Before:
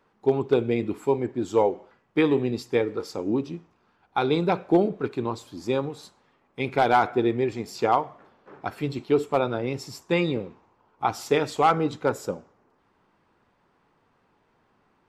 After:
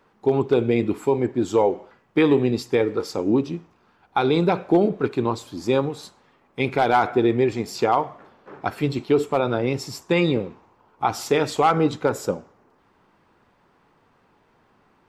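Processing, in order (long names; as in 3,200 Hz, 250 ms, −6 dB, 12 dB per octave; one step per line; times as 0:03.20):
boost into a limiter +13.5 dB
level −8 dB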